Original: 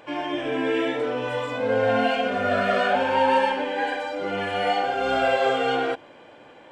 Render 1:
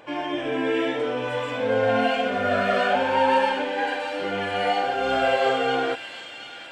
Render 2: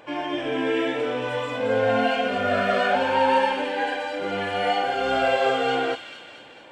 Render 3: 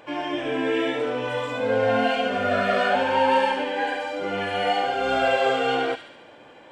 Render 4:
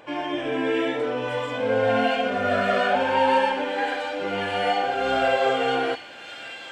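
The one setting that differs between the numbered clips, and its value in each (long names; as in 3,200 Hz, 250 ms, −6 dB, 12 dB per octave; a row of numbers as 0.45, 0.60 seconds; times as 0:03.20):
delay with a high-pass on its return, delay time: 719, 222, 71, 1,203 milliseconds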